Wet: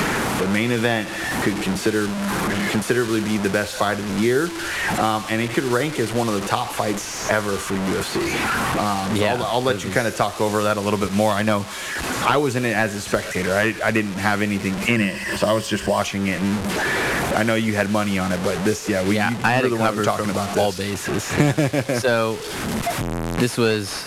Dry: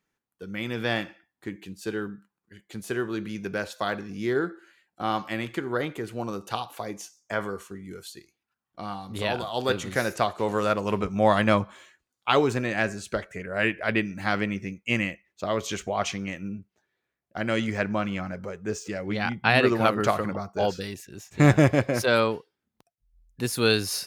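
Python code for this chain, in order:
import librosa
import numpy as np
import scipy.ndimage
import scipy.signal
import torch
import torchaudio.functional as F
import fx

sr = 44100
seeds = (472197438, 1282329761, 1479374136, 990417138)

y = fx.delta_mod(x, sr, bps=64000, step_db=-33.0)
y = fx.ripple_eq(y, sr, per_octave=1.3, db=9, at=(14.96, 16.01))
y = fx.band_squash(y, sr, depth_pct=100)
y = y * 10.0 ** (6.0 / 20.0)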